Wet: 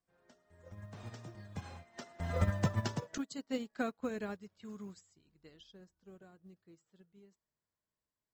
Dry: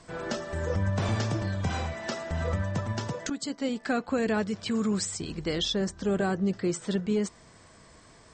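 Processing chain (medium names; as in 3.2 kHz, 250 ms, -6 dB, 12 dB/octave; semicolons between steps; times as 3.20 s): Doppler pass-by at 2.84 s, 18 m/s, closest 13 m; modulation noise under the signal 35 dB; upward expansion 2.5:1, over -44 dBFS; trim +2 dB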